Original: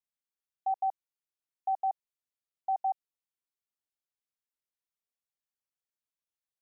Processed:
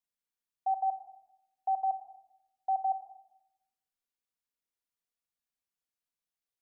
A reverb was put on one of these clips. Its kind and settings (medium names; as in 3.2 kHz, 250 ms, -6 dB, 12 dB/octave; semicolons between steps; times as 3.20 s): simulated room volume 3500 m³, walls furnished, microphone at 1.8 m; trim -1.5 dB